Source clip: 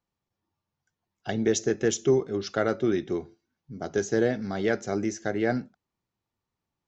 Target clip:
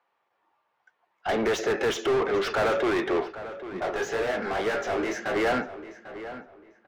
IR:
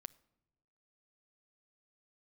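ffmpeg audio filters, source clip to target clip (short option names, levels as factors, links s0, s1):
-filter_complex "[0:a]agate=range=0.398:threshold=0.0112:ratio=16:detection=peak,acrossover=split=440 3100:gain=0.112 1 0.158[s0][s1][s2];[s0][s1][s2]amix=inputs=3:normalize=0,asplit=2[s3][s4];[s4]highpass=f=720:p=1,volume=70.8,asoftclip=type=tanh:threshold=0.178[s5];[s3][s5]amix=inputs=2:normalize=0,lowpass=f=1600:p=1,volume=0.501,asettb=1/sr,asplit=3[s6][s7][s8];[s6]atrim=end=3.204[s9];[s7]atrim=start=3.2:end=5.36,asetpts=PTS-STARTPTS,afade=t=in:d=0.004:c=qsin,afade=t=out:st=2.156:d=0.004:c=qsin,flanger=delay=15.5:depth=7.3:speed=1.9[s10];[s8]atrim=start=5.356[s11];[s9][s10]acrossfade=d=0.004:c1=hsin:c2=qsin[s12];[s12][s11]acrossfade=d=0.004:c1=qsin:c2=hsin,asplit=2[s13][s14];[s14]adelay=796,lowpass=f=2800:p=1,volume=0.224,asplit=2[s15][s16];[s16]adelay=796,lowpass=f=2800:p=1,volume=0.27,asplit=2[s17][s18];[s18]adelay=796,lowpass=f=2800:p=1,volume=0.27[s19];[s13][s15][s17][s19]amix=inputs=4:normalize=0,volume=0.841"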